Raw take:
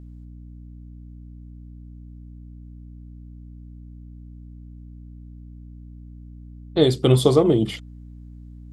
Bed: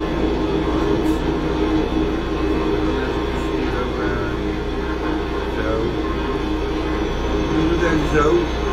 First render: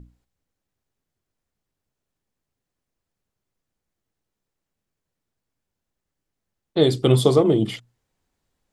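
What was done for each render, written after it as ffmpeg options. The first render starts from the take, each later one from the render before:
-af "bandreject=f=60:t=h:w=6,bandreject=f=120:t=h:w=6,bandreject=f=180:t=h:w=6,bandreject=f=240:t=h:w=6,bandreject=f=300:t=h:w=6"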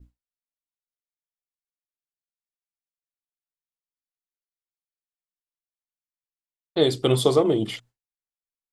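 -af "agate=range=-33dB:threshold=-43dB:ratio=3:detection=peak,equalizer=f=150:t=o:w=2.2:g=-7"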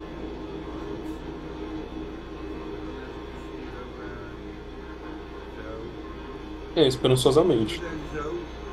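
-filter_complex "[1:a]volume=-16dB[a];[0:a][a]amix=inputs=2:normalize=0"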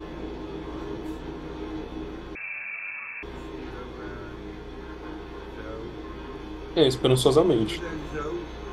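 -filter_complex "[0:a]asettb=1/sr,asplit=3[a][b][c];[a]atrim=end=2.354[d];[b]atrim=start=2.35:end=3.23,asetpts=PTS-STARTPTS,afade=t=in:d=0.004:c=qsin,afade=t=out:st=0.876:d=0.004:c=qsin,lowpass=f=2.3k:t=q:w=0.5098,lowpass=f=2.3k:t=q:w=0.6013,lowpass=f=2.3k:t=q:w=0.9,lowpass=f=2.3k:t=q:w=2.563,afreqshift=-2700[e];[c]atrim=start=3.226[f];[d][e]acrossfade=d=0.004:c1=hsin:c2=qsin[g];[g][f]acrossfade=d=0.004:c1=qsin:c2=hsin"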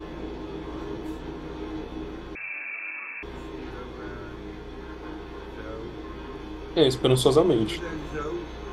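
-filter_complex "[0:a]asettb=1/sr,asplit=3[a][b][c];[a]atrim=end=2.504[d];[b]atrim=start=2.5:end=3.16,asetpts=PTS-STARTPTS,afade=t=in:d=0.004:c=qsin,afade=t=out:st=0.656:d=0.004:c=qsin,highpass=f=300:t=q:w=3.2[e];[c]atrim=start=3.156[f];[d][e]acrossfade=d=0.004:c1=hsin:c2=qsin[g];[g][f]acrossfade=d=0.004:c1=qsin:c2=hsin"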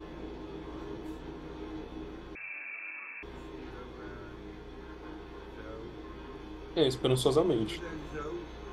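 -af "volume=-7dB"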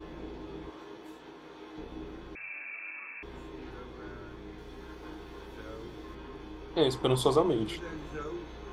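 -filter_complex "[0:a]asettb=1/sr,asplit=3[a][b][c];[a]atrim=end=0.704[d];[b]atrim=start=0.7:end=1.78,asetpts=PTS-STARTPTS,afade=t=in:d=0.004:c=qsin,afade=t=out:st=1.076:d=0.004:c=qsin,highpass=f=570:p=1[e];[c]atrim=start=1.776[f];[d][e]acrossfade=d=0.004:c1=hsin:c2=qsin[g];[g][f]acrossfade=d=0.004:c1=qsin:c2=hsin,asettb=1/sr,asplit=3[h][i][j];[h]atrim=end=4.584[k];[i]atrim=start=4.58:end=6.15,asetpts=PTS-STARTPTS,afade=t=in:d=0.004:c=qsin,afade=t=out:st=1.566:d=0.004:c=qsin,highshelf=f=5.9k:g=10[l];[j]atrim=start=6.146[m];[k][l]acrossfade=d=0.004:c1=hsin:c2=qsin[n];[n][m]acrossfade=d=0.004:c1=qsin:c2=hsin,asettb=1/sr,asplit=3[o][p][q];[o]atrim=end=6.744[r];[p]atrim=start=6.74:end=7.49,asetpts=PTS-STARTPTS,afade=t=in:d=0.004:c=qsin,afade=t=out:st=0.746:d=0.004:c=qsin,equalizer=f=960:t=o:w=0.67:g=8.5[s];[q]atrim=start=7.486[t];[r][s]acrossfade=d=0.004:c1=hsin:c2=qsin[u];[u][t]acrossfade=d=0.004:c1=qsin:c2=hsin"

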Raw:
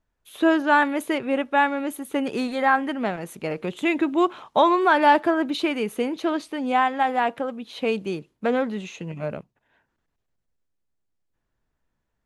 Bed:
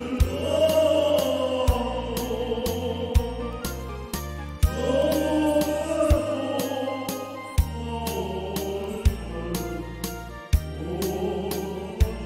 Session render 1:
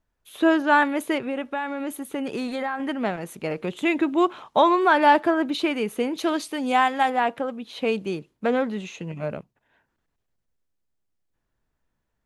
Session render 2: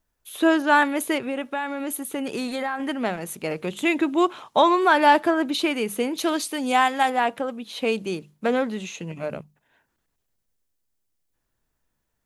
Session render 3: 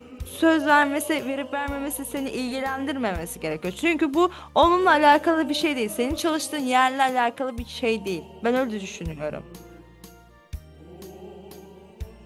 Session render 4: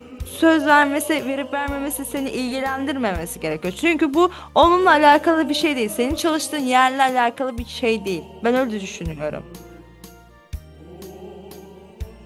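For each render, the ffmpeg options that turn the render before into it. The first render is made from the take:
-filter_complex "[0:a]asettb=1/sr,asplit=3[a][b][c];[a]atrim=end=1.204[d];[b]atrim=start=1.2:end=2.8,asetpts=PTS-STARTPTS,afade=t=in:d=0.004:c=qsin,afade=t=out:st=1.596:d=0.004:c=qsin,acompressor=threshold=-24dB:ratio=6:attack=3.2:release=140:knee=1:detection=peak[e];[c]atrim=start=2.796[f];[d][e]acrossfade=d=0.004:c1=hsin:c2=qsin[g];[g][f]acrossfade=d=0.004:c1=qsin:c2=hsin,asettb=1/sr,asplit=3[h][i][j];[h]atrim=end=6.154[k];[i]atrim=start=6.15:end=7.1,asetpts=PTS-STARTPTS,afade=t=in:d=0.004:c=qsin,afade=t=out:st=0.946:d=0.004:c=qsin,highshelf=f=4.3k:g=12[l];[j]atrim=start=7.096[m];[k][l]acrossfade=d=0.004:c1=hsin:c2=qsin[n];[n][m]acrossfade=d=0.004:c1=qsin:c2=hsin"
-af "highshelf=f=5.1k:g=10.5,bandreject=f=50:t=h:w=6,bandreject=f=100:t=h:w=6,bandreject=f=150:t=h:w=6,bandreject=f=200:t=h:w=6"
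-filter_complex "[1:a]volume=-14.5dB[a];[0:a][a]amix=inputs=2:normalize=0"
-af "volume=4dB,alimiter=limit=-2dB:level=0:latency=1"

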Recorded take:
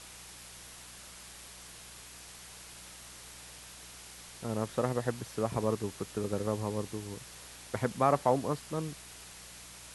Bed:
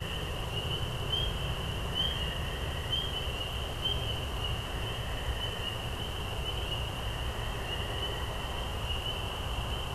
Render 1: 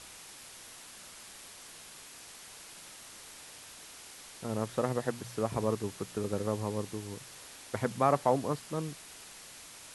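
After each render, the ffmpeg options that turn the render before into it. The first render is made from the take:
-af "bandreject=f=60:t=h:w=4,bandreject=f=120:t=h:w=4,bandreject=f=180:t=h:w=4"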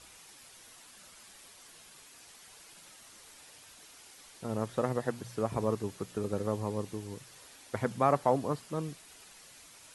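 -af "afftdn=nr=7:nf=-51"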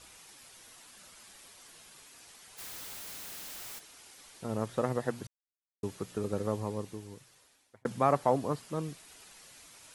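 -filter_complex "[0:a]asplit=3[a][b][c];[a]afade=t=out:st=2.57:d=0.02[d];[b]aeval=exprs='0.00891*sin(PI/2*8.91*val(0)/0.00891)':c=same,afade=t=in:st=2.57:d=0.02,afade=t=out:st=3.78:d=0.02[e];[c]afade=t=in:st=3.78:d=0.02[f];[d][e][f]amix=inputs=3:normalize=0,asplit=4[g][h][i][j];[g]atrim=end=5.27,asetpts=PTS-STARTPTS,afade=t=out:st=5.266:d=0.004:c=hsin[k];[h]atrim=start=5.27:end=5.83,asetpts=PTS-STARTPTS,volume=0[l];[i]atrim=start=5.83:end=7.85,asetpts=PTS-STARTPTS,afade=t=in:d=0.004:c=hsin,afade=t=out:st=0.68:d=1.34[m];[j]atrim=start=7.85,asetpts=PTS-STARTPTS,afade=t=in:d=0.004:c=hsin[n];[k][l][m][n]concat=n=4:v=0:a=1"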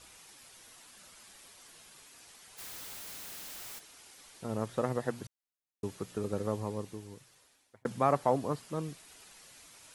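-af "volume=-1dB"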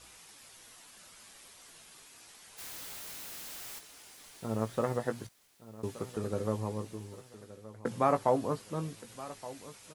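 -filter_complex "[0:a]asplit=2[a][b];[b]adelay=18,volume=-8.5dB[c];[a][c]amix=inputs=2:normalize=0,aecho=1:1:1172|2344|3516:0.15|0.0569|0.0216"

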